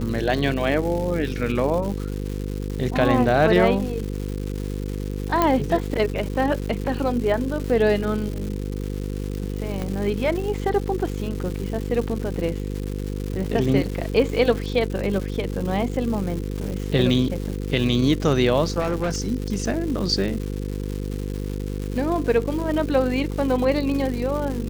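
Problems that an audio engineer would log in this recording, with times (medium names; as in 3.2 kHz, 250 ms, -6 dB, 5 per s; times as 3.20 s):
buzz 50 Hz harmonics 10 -28 dBFS
crackle 330 per s -29 dBFS
5.42 s: pop -6 dBFS
9.82 s: pop -15 dBFS
18.79–19.28 s: clipped -19.5 dBFS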